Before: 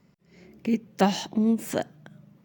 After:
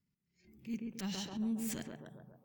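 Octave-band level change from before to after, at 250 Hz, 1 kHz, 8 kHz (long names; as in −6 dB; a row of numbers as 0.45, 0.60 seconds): −13.0, −23.0, −6.0 decibels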